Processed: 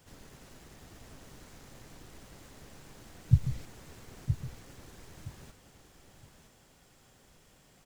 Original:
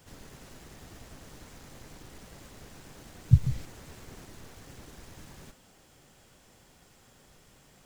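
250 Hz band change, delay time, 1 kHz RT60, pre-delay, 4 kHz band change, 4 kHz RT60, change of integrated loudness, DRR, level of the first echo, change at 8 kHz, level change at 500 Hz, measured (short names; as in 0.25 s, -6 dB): -3.0 dB, 0.967 s, none, none, -3.0 dB, none, -7.0 dB, none, -8.0 dB, -3.0 dB, -3.0 dB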